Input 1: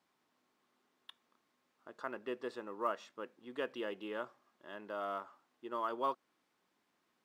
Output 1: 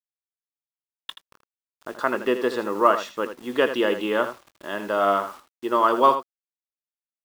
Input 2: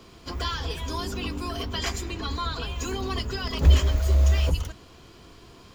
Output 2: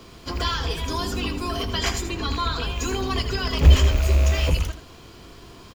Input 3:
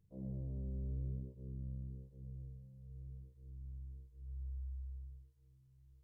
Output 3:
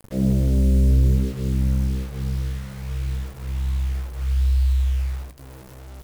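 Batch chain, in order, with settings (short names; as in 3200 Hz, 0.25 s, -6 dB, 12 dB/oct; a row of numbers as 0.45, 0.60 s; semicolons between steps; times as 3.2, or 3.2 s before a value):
rattling part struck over -26 dBFS, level -28 dBFS; bit-crush 11-bit; early reflections 20 ms -16.5 dB, 80 ms -10.5 dB; match loudness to -23 LUFS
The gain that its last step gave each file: +18.0, +4.0, +24.5 dB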